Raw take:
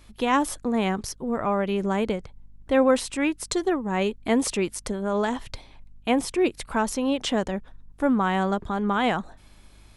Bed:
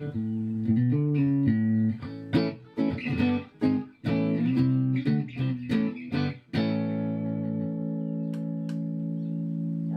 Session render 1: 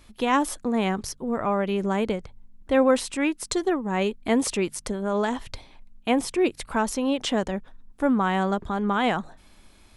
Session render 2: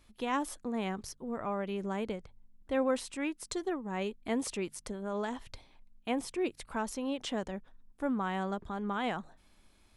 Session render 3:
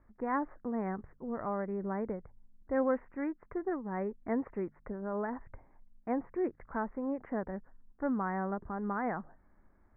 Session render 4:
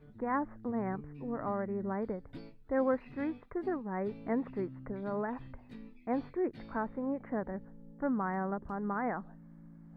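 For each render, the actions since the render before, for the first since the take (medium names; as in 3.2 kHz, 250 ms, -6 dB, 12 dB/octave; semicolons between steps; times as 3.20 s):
de-hum 50 Hz, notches 3
trim -10.5 dB
local Wiener filter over 9 samples; steep low-pass 2 kHz 72 dB/octave
add bed -23.5 dB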